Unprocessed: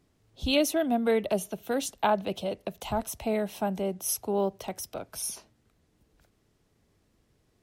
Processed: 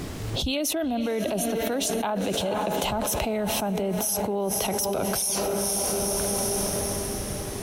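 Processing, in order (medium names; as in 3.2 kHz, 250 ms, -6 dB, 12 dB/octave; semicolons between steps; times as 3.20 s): echo that smears into a reverb 485 ms, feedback 46%, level -13.5 dB; level flattener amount 100%; trim -5.5 dB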